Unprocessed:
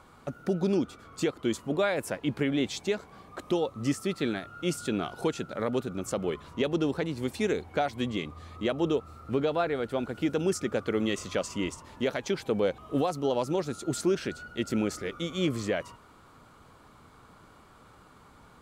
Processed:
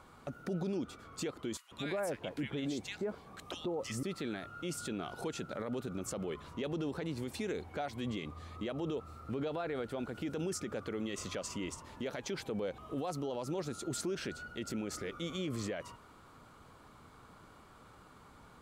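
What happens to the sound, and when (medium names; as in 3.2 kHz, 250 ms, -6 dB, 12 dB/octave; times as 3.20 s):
1.57–4.03 s: bands offset in time highs, lows 140 ms, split 1.5 kHz
whole clip: peak limiter -26.5 dBFS; trim -2.5 dB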